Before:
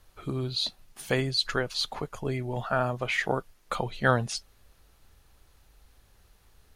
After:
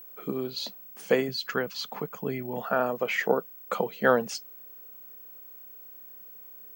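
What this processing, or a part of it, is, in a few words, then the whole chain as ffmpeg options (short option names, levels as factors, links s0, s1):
old television with a line whistle: -filter_complex "[0:a]asettb=1/sr,asplit=3[s0][s1][s2];[s0]atrim=end=1.284[s3];[s1]atrim=start=1.28:end=2.58,asetpts=PTS-STARTPTS,afade=t=in:d=0.004:c=qsin,afade=t=out:st=1.296:d=0.004:c=qsin,equalizer=f=125:t=o:w=1:g=6,equalizer=f=500:t=o:w=1:g=-6,equalizer=f=8000:t=o:w=1:g=-5[s4];[s2]atrim=start=2.576[s5];[s3][s4]acrossfade=d=0.004:c1=hsin:c2=qsin[s6];[s6][s5]acrossfade=d=0.004:c1=qsin:c2=hsin,highpass=f=190:w=0.5412,highpass=f=190:w=1.3066,equalizer=f=190:t=q:w=4:g=8,equalizer=f=470:t=q:w=4:g=9,equalizer=f=3800:t=q:w=4:g=-9,lowpass=f=8100:w=0.5412,lowpass=f=8100:w=1.3066,aeval=exprs='val(0)+0.00631*sin(2*PI*15734*n/s)':c=same"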